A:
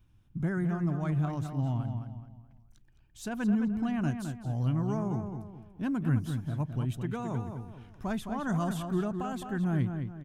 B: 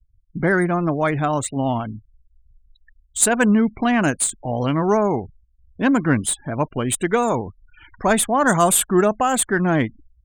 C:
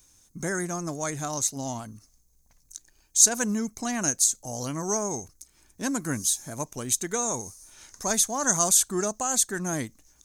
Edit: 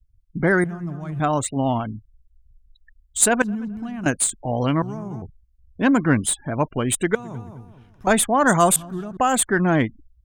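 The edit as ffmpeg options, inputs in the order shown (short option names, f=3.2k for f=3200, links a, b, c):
-filter_complex "[0:a]asplit=5[a][b][c][d][e];[1:a]asplit=6[f][g][h][i][j][k];[f]atrim=end=0.642[l];[a]atrim=start=0.638:end=1.202[m];[g]atrim=start=1.198:end=3.422[n];[b]atrim=start=3.418:end=4.062[o];[h]atrim=start=4.058:end=4.822[p];[c]atrim=start=4.818:end=5.222[q];[i]atrim=start=5.218:end=7.152[r];[d]atrim=start=7.148:end=8.072[s];[j]atrim=start=8.068:end=8.762[t];[e]atrim=start=8.758:end=9.172[u];[k]atrim=start=9.168[v];[l][m]acrossfade=d=0.004:c1=hsin:c2=hsin[w];[w][n]acrossfade=d=0.004:c1=hsin:c2=hsin[x];[x][o]acrossfade=d=0.004:c1=hsin:c2=hsin[y];[y][p]acrossfade=d=0.004:c1=hsin:c2=hsin[z];[z][q]acrossfade=d=0.004:c1=hsin:c2=hsin[aa];[aa][r]acrossfade=d=0.004:c1=hsin:c2=hsin[ab];[ab][s]acrossfade=d=0.004:c1=hsin:c2=hsin[ac];[ac][t]acrossfade=d=0.004:c1=hsin:c2=hsin[ad];[ad][u]acrossfade=d=0.004:c1=hsin:c2=hsin[ae];[ae][v]acrossfade=d=0.004:c1=hsin:c2=hsin"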